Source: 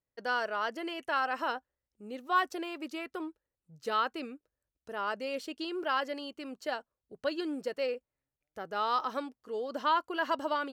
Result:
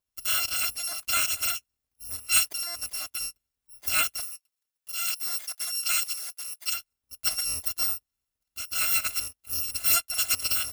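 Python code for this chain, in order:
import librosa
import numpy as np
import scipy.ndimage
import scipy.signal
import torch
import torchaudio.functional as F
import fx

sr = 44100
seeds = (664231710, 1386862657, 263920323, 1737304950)

y = fx.bit_reversed(x, sr, seeds[0], block=256)
y = fx.highpass(y, sr, hz=1400.0, slope=6, at=(4.2, 6.74))
y = F.gain(torch.from_numpy(y), 5.0).numpy()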